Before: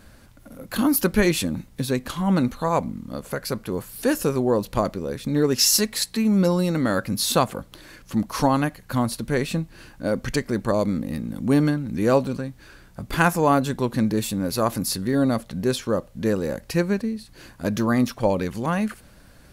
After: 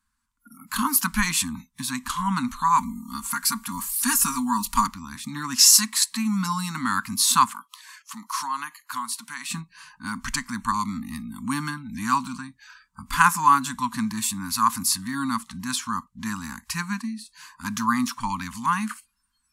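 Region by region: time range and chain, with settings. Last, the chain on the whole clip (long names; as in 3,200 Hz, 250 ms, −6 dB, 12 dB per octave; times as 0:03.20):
0:02.78–0:04.87: high-shelf EQ 6,500 Hz +9.5 dB + comb filter 4.3 ms
0:07.52–0:09.50: high-pass filter 800 Hz 6 dB per octave + downward compressor 2 to 1, threshold −31 dBFS
whole clip: elliptic band-stop filter 250–990 Hz, stop band 40 dB; noise reduction from a noise print of the clip's start 26 dB; graphic EQ with 10 bands 125 Hz −12 dB, 1,000 Hz +10 dB, 8,000 Hz +9 dB; level −1 dB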